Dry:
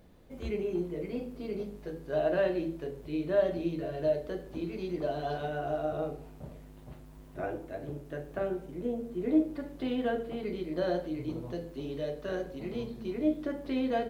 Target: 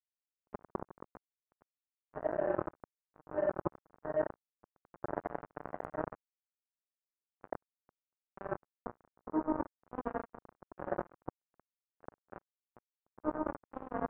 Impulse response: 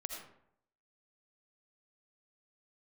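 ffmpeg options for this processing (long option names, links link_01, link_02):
-filter_complex "[1:a]atrim=start_sample=2205[link_01];[0:a][link_01]afir=irnorm=-1:irlink=0,acrusher=bits=3:mix=0:aa=0.5,lowshelf=frequency=75:gain=-8,areverse,acompressor=threshold=-39dB:ratio=4,areverse,lowpass=frequency=1300:width=0.5412,lowpass=frequency=1300:width=1.3066,volume=8dB"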